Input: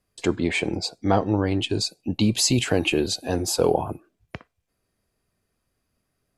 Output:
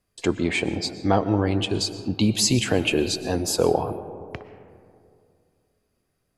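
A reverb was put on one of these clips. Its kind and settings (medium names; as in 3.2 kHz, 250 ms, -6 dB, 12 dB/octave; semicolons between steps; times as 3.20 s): algorithmic reverb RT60 2.4 s, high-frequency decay 0.3×, pre-delay 80 ms, DRR 12 dB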